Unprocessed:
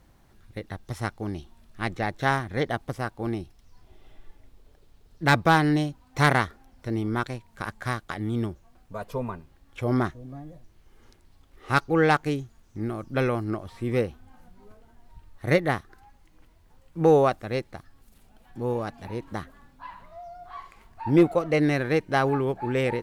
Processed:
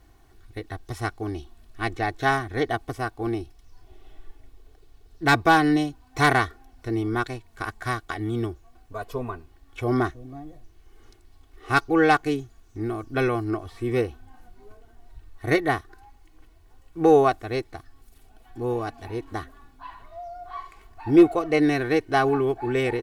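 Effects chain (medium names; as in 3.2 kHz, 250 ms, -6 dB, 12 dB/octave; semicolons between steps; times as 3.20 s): comb 2.7 ms, depth 73%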